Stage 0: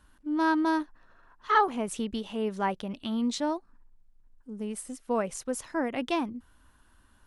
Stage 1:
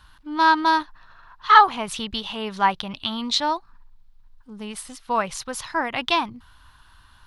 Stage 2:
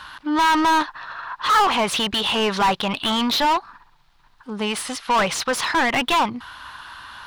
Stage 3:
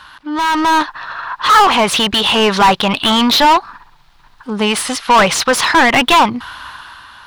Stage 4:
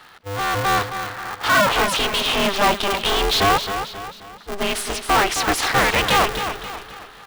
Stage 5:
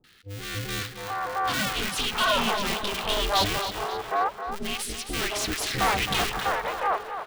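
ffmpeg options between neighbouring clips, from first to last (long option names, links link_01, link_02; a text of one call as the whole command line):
ffmpeg -i in.wav -af "equalizer=frequency=125:width_type=o:width=1:gain=4,equalizer=frequency=250:width_type=o:width=1:gain=-10,equalizer=frequency=500:width_type=o:width=1:gain=-9,equalizer=frequency=1000:width_type=o:width=1:gain=6,equalizer=frequency=4000:width_type=o:width=1:gain=10,equalizer=frequency=8000:width_type=o:width=1:gain=-7,volume=8dB" out.wav
ffmpeg -i in.wav -filter_complex "[0:a]asplit=2[link_01][link_02];[link_02]highpass=frequency=720:poles=1,volume=34dB,asoftclip=type=tanh:threshold=-2dB[link_03];[link_01][link_03]amix=inputs=2:normalize=0,lowpass=frequency=2900:poles=1,volume=-6dB,volume=-8dB" out.wav
ffmpeg -i in.wav -af "dynaudnorm=framelen=110:gausssize=13:maxgain=10dB" out.wav
ffmpeg -i in.wav -af "aecho=1:1:267|534|801|1068|1335:0.355|0.153|0.0656|0.0282|0.0121,aeval=exprs='val(0)*sgn(sin(2*PI*200*n/s))':channel_layout=same,volume=-7.5dB" out.wav
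ffmpeg -i in.wav -filter_complex "[0:a]acrossover=split=420|1700[link_01][link_02][link_03];[link_03]adelay=40[link_04];[link_02]adelay=710[link_05];[link_01][link_05][link_04]amix=inputs=3:normalize=0,volume=-5.5dB" out.wav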